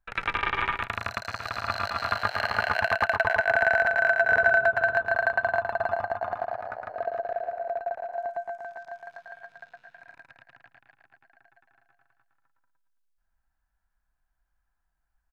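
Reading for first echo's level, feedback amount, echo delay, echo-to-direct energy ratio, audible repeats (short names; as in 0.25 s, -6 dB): -5.0 dB, 23%, 0.112 s, -5.0 dB, 3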